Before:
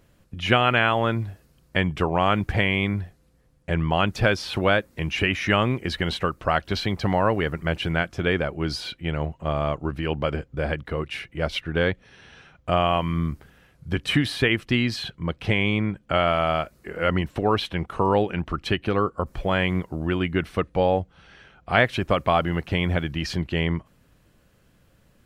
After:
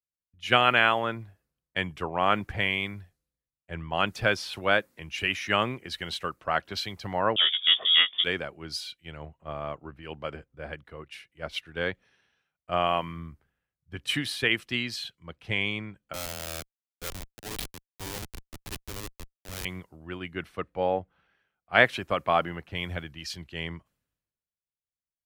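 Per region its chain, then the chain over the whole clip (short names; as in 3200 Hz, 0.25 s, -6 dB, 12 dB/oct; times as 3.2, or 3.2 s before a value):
7.36–8.24 inverted band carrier 3500 Hz + doubler 18 ms -5 dB
16.13–19.65 HPF 160 Hz 24 dB/oct + high shelf 3400 Hz +5 dB + Schmitt trigger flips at -20.5 dBFS
whole clip: tilt +2 dB/oct; three-band expander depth 100%; gain -7 dB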